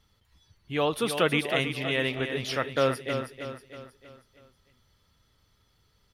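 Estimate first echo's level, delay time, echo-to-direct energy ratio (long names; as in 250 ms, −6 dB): −8.0 dB, 319 ms, −7.0 dB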